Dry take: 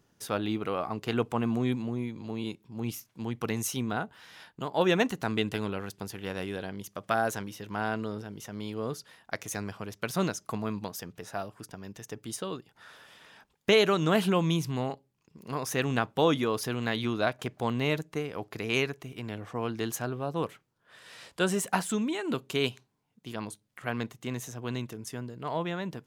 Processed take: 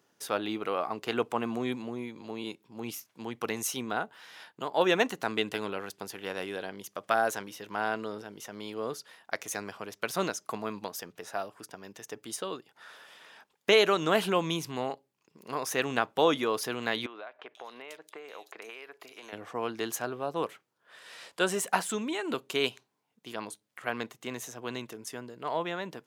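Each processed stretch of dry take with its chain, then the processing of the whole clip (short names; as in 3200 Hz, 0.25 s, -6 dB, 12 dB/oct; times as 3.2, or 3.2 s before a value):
17.06–19.33 HPF 470 Hz + compressor 8:1, threshold -40 dBFS + bands offset in time lows, highs 0.49 s, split 3400 Hz
whole clip: HPF 110 Hz; tone controls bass -12 dB, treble -1 dB; gain +1.5 dB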